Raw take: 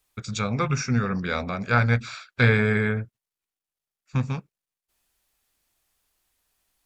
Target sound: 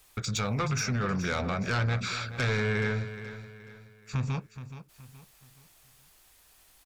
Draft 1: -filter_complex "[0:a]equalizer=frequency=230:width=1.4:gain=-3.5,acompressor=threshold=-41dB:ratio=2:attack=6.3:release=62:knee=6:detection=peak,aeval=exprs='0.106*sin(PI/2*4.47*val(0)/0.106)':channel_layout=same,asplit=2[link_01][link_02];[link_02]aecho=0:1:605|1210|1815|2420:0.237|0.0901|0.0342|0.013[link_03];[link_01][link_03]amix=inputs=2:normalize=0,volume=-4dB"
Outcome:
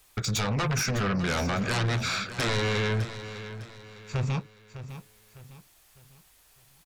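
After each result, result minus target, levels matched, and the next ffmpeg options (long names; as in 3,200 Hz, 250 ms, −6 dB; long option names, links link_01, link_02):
echo 181 ms late; downward compressor: peak gain reduction −5 dB
-filter_complex "[0:a]equalizer=frequency=230:width=1.4:gain=-3.5,acompressor=threshold=-41dB:ratio=2:attack=6.3:release=62:knee=6:detection=peak,aeval=exprs='0.106*sin(PI/2*4.47*val(0)/0.106)':channel_layout=same,asplit=2[link_01][link_02];[link_02]aecho=0:1:424|848|1272|1696:0.237|0.0901|0.0342|0.013[link_03];[link_01][link_03]amix=inputs=2:normalize=0,volume=-4dB"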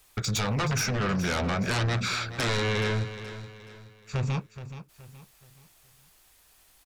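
downward compressor: peak gain reduction −5 dB
-filter_complex "[0:a]equalizer=frequency=230:width=1.4:gain=-3.5,acompressor=threshold=-51dB:ratio=2:attack=6.3:release=62:knee=6:detection=peak,aeval=exprs='0.106*sin(PI/2*4.47*val(0)/0.106)':channel_layout=same,asplit=2[link_01][link_02];[link_02]aecho=0:1:424|848|1272|1696:0.237|0.0901|0.0342|0.013[link_03];[link_01][link_03]amix=inputs=2:normalize=0,volume=-4dB"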